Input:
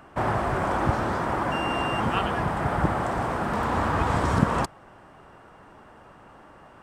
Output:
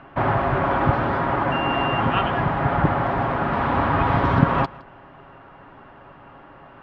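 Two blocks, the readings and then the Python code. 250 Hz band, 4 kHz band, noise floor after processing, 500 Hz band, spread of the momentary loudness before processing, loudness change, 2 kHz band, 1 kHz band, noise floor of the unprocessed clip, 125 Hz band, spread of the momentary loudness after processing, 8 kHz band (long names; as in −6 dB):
+4.0 dB, +3.0 dB, −46 dBFS, +4.0 dB, 4 LU, +4.5 dB, +4.5 dB, +4.5 dB, −51 dBFS, +5.0 dB, 4 LU, below −20 dB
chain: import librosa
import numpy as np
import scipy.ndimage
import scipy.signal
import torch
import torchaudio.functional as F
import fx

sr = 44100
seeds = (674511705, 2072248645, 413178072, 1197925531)

y = scipy.signal.sosfilt(scipy.signal.butter(4, 3500.0, 'lowpass', fs=sr, output='sos'), x)
y = fx.notch(y, sr, hz=450.0, q=12.0)
y = y + 0.36 * np.pad(y, (int(7.3 * sr / 1000.0), 0))[:len(y)]
y = y + 10.0 ** (-21.5 / 20.0) * np.pad(y, (int(163 * sr / 1000.0), 0))[:len(y)]
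y = y * 10.0 ** (4.0 / 20.0)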